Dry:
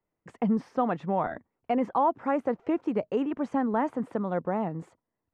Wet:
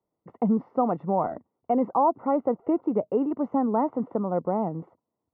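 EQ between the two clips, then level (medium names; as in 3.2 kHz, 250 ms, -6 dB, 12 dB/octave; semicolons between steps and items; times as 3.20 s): Savitzky-Golay filter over 65 samples; high-pass 140 Hz 6 dB/octave; distance through air 130 m; +4.0 dB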